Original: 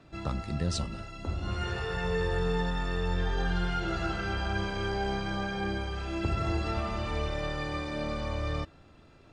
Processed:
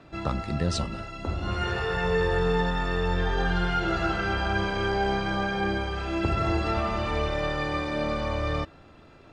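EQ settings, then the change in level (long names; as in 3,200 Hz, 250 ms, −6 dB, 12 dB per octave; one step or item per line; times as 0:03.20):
low-shelf EQ 250 Hz −5.5 dB
high-shelf EQ 4,200 Hz −8 dB
+7.5 dB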